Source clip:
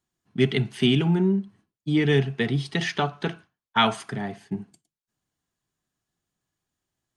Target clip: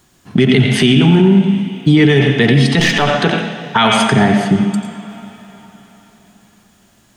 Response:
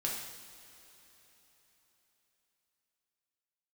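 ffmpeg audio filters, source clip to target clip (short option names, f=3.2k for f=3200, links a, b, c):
-filter_complex "[0:a]asettb=1/sr,asplit=3[a][b][c];[a]atrim=end=2.794[d];[b]atrim=start=2.79:end=3.19,asetpts=PTS-STARTPTS,afade=t=in:d=0.004:c=qsin,afade=t=out:st=0.396:d=0.004:c=qsin,aeval=exprs='if(lt(val(0),0),0.447*val(0),val(0))':c=same[e];[c]atrim=start=3.186[f];[d][e]acrossfade=d=0.004:c1=hsin:c2=qsin[g];[g][f]acrossfade=d=0.004:c1=qsin:c2=hsin,acompressor=threshold=-45dB:ratio=2,asplit=2[h][i];[i]highpass=170,equalizer=f=230:t=q:w=4:g=9,equalizer=f=360:t=q:w=4:g=-8,equalizer=f=610:t=q:w=4:g=5,equalizer=f=2.6k:t=q:w=4:g=5,equalizer=f=4.6k:t=q:w=4:g=-5,lowpass=f=8.6k:w=0.5412,lowpass=f=8.6k:w=1.3066[j];[1:a]atrim=start_sample=2205,adelay=88[k];[j][k]afir=irnorm=-1:irlink=0,volume=-9dB[l];[h][l]amix=inputs=2:normalize=0,alimiter=level_in=30dB:limit=-1dB:release=50:level=0:latency=1,volume=-1dB"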